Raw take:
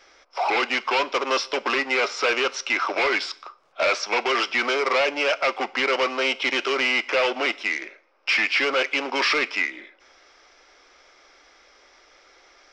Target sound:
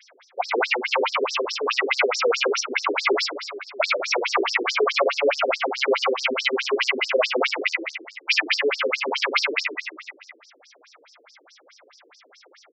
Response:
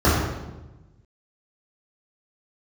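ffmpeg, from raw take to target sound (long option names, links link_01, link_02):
-filter_complex "[0:a]asplit=3[link_01][link_02][link_03];[link_01]afade=type=out:start_time=8.56:duration=0.02[link_04];[link_02]aemphasis=mode=reproduction:type=75kf,afade=type=in:start_time=8.56:duration=0.02,afade=type=out:start_time=8.97:duration=0.02[link_05];[link_03]afade=type=in:start_time=8.97:duration=0.02[link_06];[link_04][link_05][link_06]amix=inputs=3:normalize=0,aecho=1:1:80|180|305|461.2|656.6:0.631|0.398|0.251|0.158|0.1,afftfilt=real='re*between(b*sr/1024,340*pow(6200/340,0.5+0.5*sin(2*PI*4.7*pts/sr))/1.41,340*pow(6200/340,0.5+0.5*sin(2*PI*4.7*pts/sr))*1.41)':imag='im*between(b*sr/1024,340*pow(6200/340,0.5+0.5*sin(2*PI*4.7*pts/sr))/1.41,340*pow(6200/340,0.5+0.5*sin(2*PI*4.7*pts/sr))*1.41)':win_size=1024:overlap=0.75,volume=6.5dB"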